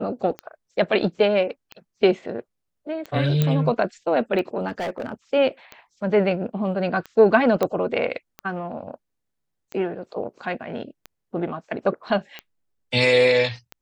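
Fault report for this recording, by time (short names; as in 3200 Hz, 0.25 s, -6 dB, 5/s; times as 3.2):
tick 45 rpm -19 dBFS
3.42 pop -8 dBFS
4.68–5.14 clipped -23.5 dBFS
7.63 pop -9 dBFS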